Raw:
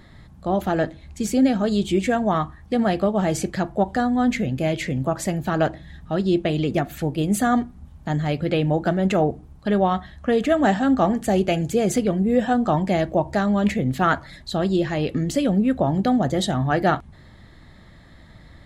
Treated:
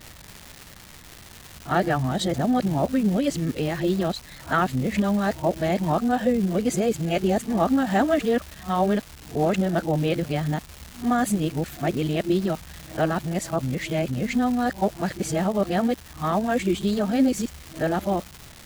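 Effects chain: reverse the whole clip; crackle 560 per s -28 dBFS; trim -2.5 dB

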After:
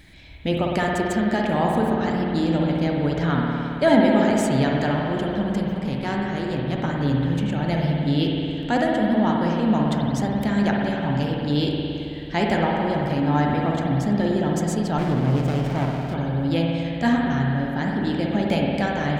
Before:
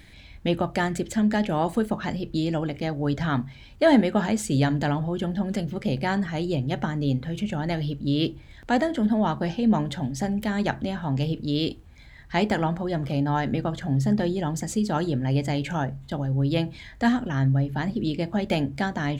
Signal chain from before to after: 5.43–6.81 s: valve stage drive 18 dB, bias 0.6; spring tank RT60 3 s, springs 54 ms, chirp 40 ms, DRR -1.5 dB; 14.98–16.14 s: sliding maximum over 17 samples

